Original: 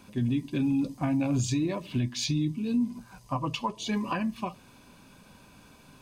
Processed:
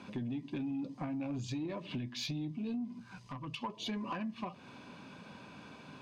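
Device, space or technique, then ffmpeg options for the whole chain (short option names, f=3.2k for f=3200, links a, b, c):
AM radio: -filter_complex "[0:a]highpass=130,lowpass=3.9k,acompressor=threshold=-39dB:ratio=6,asoftclip=type=tanh:threshold=-34dB,asettb=1/sr,asplit=3[a][b][c];[a]atrim=end=2.954[d];[b]atrim=start=2.95:end=3.62,asetpts=PTS-STARTPTS,afade=t=in:d=0.004:c=qsin,afade=t=out:st=0.666:d=0.004:c=qsin,equalizer=f=650:w=0.81:g=-10.5[e];[c]atrim=start=3.616[f];[d][e]acrossfade=d=0.004:c1=hsin:c2=qsin[g];[g][f]acrossfade=d=0.004:c1=qsin:c2=hsin,volume=4dB"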